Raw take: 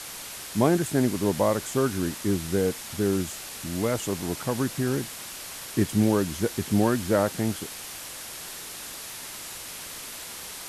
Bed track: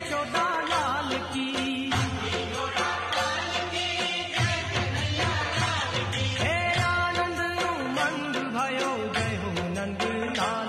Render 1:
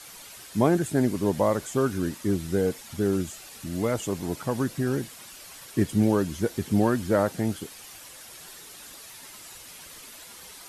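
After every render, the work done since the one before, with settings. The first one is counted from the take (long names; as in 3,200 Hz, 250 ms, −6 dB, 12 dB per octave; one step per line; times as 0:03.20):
broadband denoise 9 dB, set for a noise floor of −39 dBFS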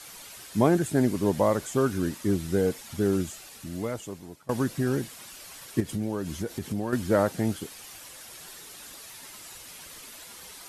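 0:03.24–0:04.49: fade out linear, to −23.5 dB
0:05.80–0:06.93: downward compressor 4 to 1, threshold −27 dBFS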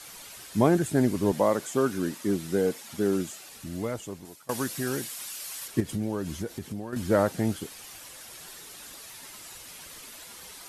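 0:01.32–0:03.48: high-pass filter 170 Hz
0:04.25–0:05.68: spectral tilt +2.5 dB per octave
0:06.27–0:06.96: fade out, to −8.5 dB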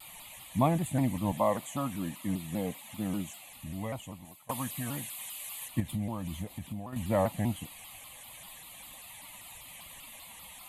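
phaser with its sweep stopped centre 1,500 Hz, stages 6
pitch modulation by a square or saw wave saw down 5.1 Hz, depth 160 cents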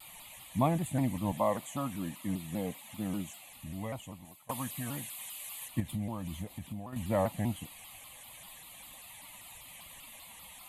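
level −2 dB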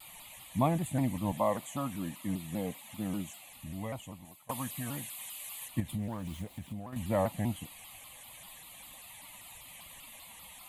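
0:05.98–0:06.96: phase distortion by the signal itself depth 0.14 ms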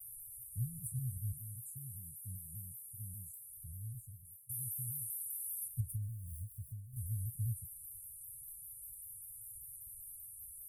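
Chebyshev band-stop filter 120–9,400 Hz, order 4
high-shelf EQ 8,800 Hz +6 dB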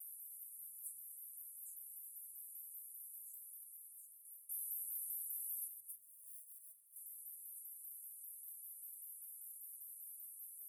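high-pass filter 640 Hz 24 dB per octave
dynamic equaliser 9,500 Hz, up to −6 dB, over −57 dBFS, Q 2.3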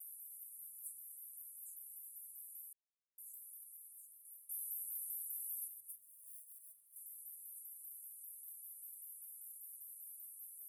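0:01.10–0:01.80: hollow resonant body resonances 690/1,400 Hz, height 9 dB
0:02.73–0:03.18: silence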